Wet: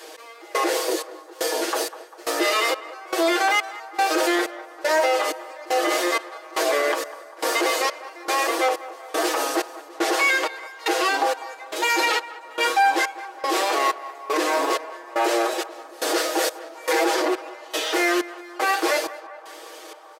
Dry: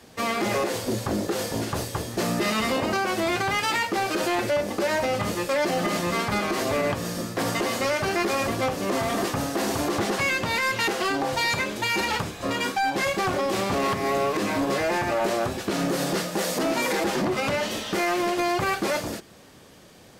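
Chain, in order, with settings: steep high-pass 330 Hz 72 dB/octave; trance gate "xx.....xxxx" 192 bpm -24 dB; comb 6.3 ms, depth 82%; in parallel at +3 dB: peak limiter -18.5 dBFS, peak gain reduction 7.5 dB; on the sum: wow and flutter 16 cents; band-passed feedback delay 198 ms, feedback 62%, band-pass 970 Hz, level -15 dB; reverse; upward compressor, threshold -31 dBFS; reverse; trim -3 dB

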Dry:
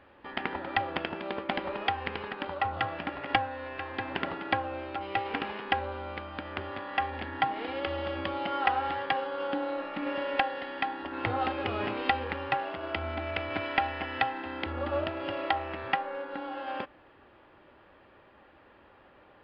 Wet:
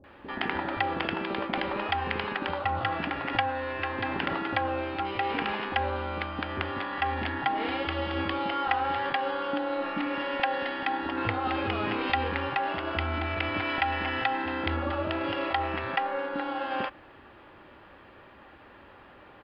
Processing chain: in parallel at +1 dB: compressor with a negative ratio -35 dBFS; on the sum: bands offset in time lows, highs 40 ms, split 530 Hz; trim -1 dB

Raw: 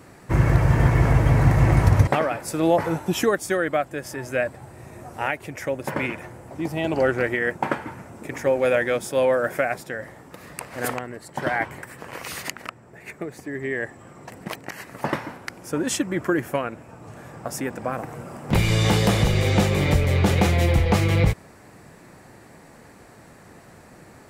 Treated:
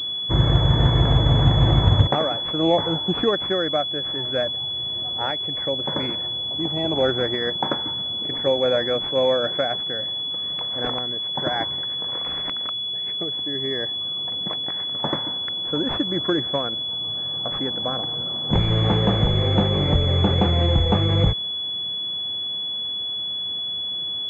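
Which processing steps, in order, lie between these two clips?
class-D stage that switches slowly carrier 3.4 kHz

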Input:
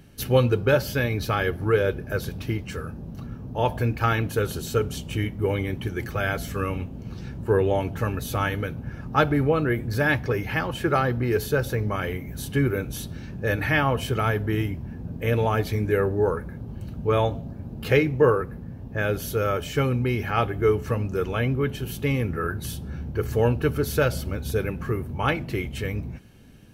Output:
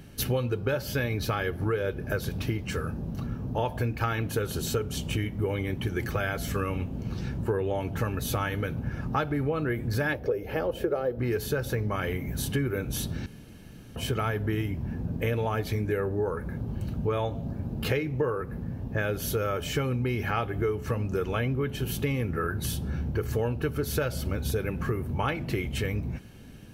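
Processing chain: 10.13–11.19 s: graphic EQ 125/250/500/1000/2000/4000/8000 Hz -9/-4/+12/-8/-8/-5/-9 dB; compression 6:1, threshold -28 dBFS, peak gain reduction 14.5 dB; 13.26–13.96 s: room tone; trim +3 dB

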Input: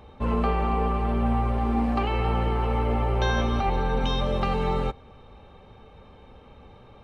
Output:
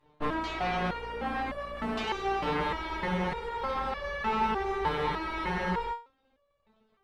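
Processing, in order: Chebyshev shaper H 5 -24 dB, 7 -16 dB, 8 -9 dB, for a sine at -12 dBFS; spectral freeze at 2.61 s, 3.30 s; resonator arpeggio 3.3 Hz 150–570 Hz; trim +4 dB

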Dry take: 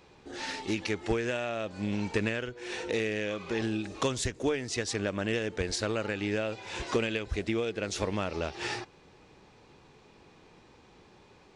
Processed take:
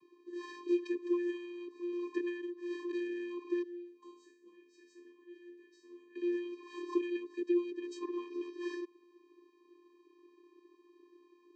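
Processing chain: vibrato 0.8 Hz 21 cents; 3.62–6.15 s: chord resonator C#3 minor, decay 0.55 s; vocoder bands 16, square 350 Hz; trim -3 dB

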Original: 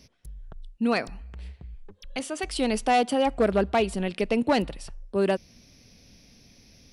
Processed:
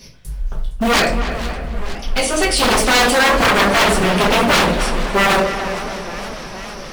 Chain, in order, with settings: in parallel at -5.5 dB: short-mantissa float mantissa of 2-bit; on the sum: simulated room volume 31 m³, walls mixed, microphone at 1.1 m; wavefolder -14 dBFS; bass shelf 500 Hz -7 dB; on a send: filtered feedback delay 282 ms, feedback 55%, low-pass 2.5 kHz, level -9 dB; on the sum: modulated delay 461 ms, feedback 75%, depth 205 cents, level -15 dB; trim +7.5 dB

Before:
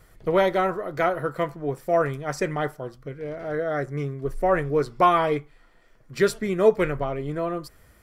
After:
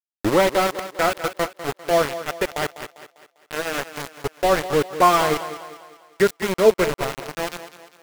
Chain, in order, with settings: tape start-up on the opening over 0.40 s; small samples zeroed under -22.5 dBFS; thinning echo 199 ms, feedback 46%, high-pass 160 Hz, level -12.5 dB; trim +3 dB

